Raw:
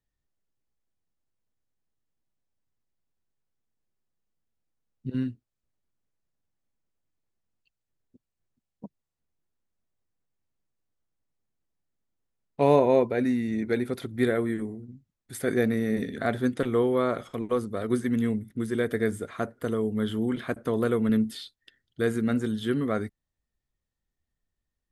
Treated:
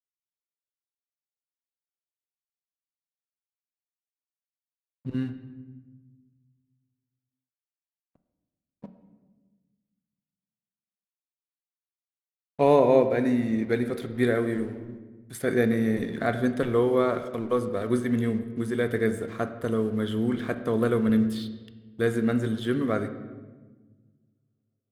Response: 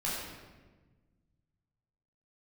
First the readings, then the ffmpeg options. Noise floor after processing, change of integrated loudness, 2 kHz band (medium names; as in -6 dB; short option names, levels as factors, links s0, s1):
under -85 dBFS, +1.5 dB, +1.5 dB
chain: -filter_complex "[0:a]aeval=exprs='sgn(val(0))*max(abs(val(0))-0.00237,0)':c=same,asplit=2[s0][s1];[1:a]atrim=start_sample=2205,lowpass=4500[s2];[s1][s2]afir=irnorm=-1:irlink=0,volume=0.224[s3];[s0][s3]amix=inputs=2:normalize=0"